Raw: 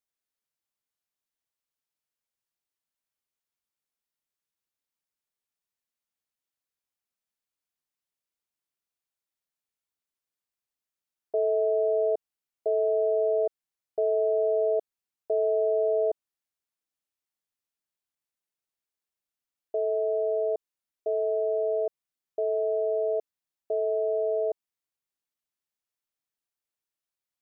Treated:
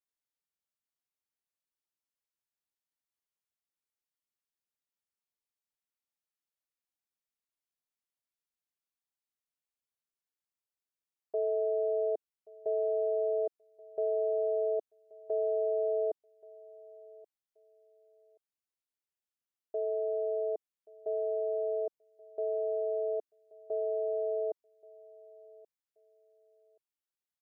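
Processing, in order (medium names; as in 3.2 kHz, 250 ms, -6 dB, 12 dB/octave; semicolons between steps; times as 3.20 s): dynamic bell 350 Hz, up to +3 dB, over -36 dBFS, Q 1.6; feedback delay 1129 ms, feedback 24%, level -22 dB; trim -7 dB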